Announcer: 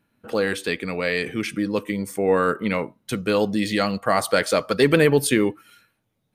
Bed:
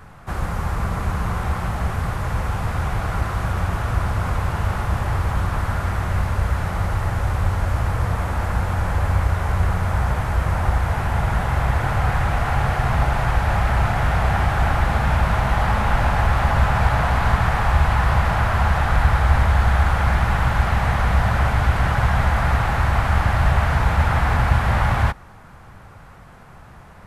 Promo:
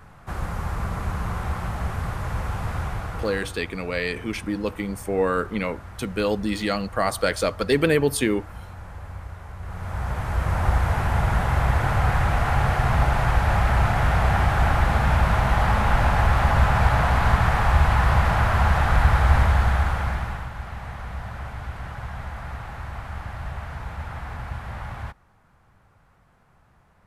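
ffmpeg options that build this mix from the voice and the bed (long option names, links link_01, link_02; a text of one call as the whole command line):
ffmpeg -i stem1.wav -i stem2.wav -filter_complex "[0:a]adelay=2900,volume=-3dB[link_01];[1:a]volume=12dB,afade=type=out:start_time=2.76:duration=0.82:silence=0.223872,afade=type=in:start_time=9.61:duration=1.13:silence=0.149624,afade=type=out:start_time=19.39:duration=1.1:silence=0.188365[link_02];[link_01][link_02]amix=inputs=2:normalize=0" out.wav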